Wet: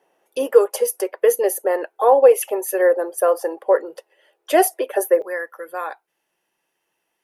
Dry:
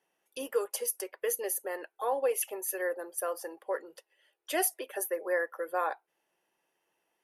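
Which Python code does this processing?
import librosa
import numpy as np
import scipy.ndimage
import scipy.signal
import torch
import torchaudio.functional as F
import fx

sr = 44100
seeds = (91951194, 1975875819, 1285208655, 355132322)

y = fx.peak_eq(x, sr, hz=550.0, db=fx.steps((0.0, 12.0), (5.22, -4.0)), octaves=2.5)
y = F.gain(torch.from_numpy(y), 6.0).numpy()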